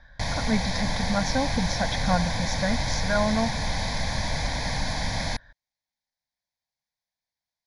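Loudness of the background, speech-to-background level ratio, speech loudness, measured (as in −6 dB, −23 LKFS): −28.5 LKFS, 0.0 dB, −28.5 LKFS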